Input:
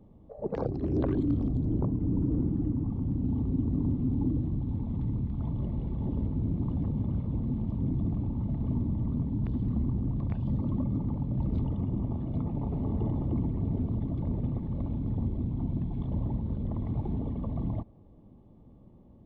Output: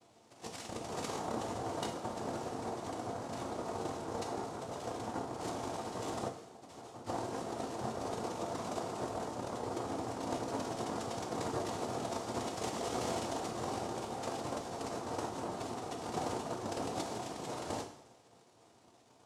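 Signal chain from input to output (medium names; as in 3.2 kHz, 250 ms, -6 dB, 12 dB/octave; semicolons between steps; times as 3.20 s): boxcar filter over 38 samples; spectral gate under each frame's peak -25 dB weak; 6.27–7.06 s: inharmonic resonator 170 Hz, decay 0.34 s, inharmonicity 0.002; noise-vocoded speech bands 2; two-slope reverb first 0.53 s, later 1.8 s, from -18 dB, DRR 2 dB; trim +16 dB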